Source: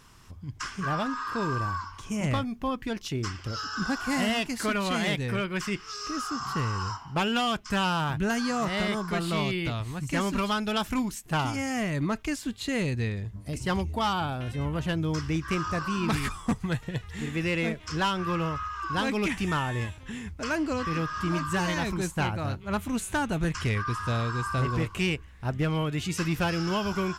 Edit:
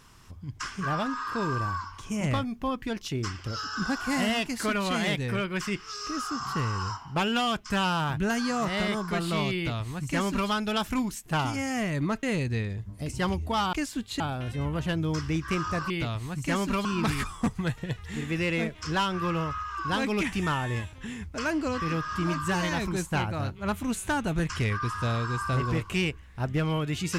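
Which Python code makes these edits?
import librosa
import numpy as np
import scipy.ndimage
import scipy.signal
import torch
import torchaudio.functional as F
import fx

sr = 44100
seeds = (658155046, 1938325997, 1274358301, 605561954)

y = fx.edit(x, sr, fx.duplicate(start_s=9.55, length_s=0.95, to_s=15.9),
    fx.move(start_s=12.23, length_s=0.47, to_s=14.2), tone=tone)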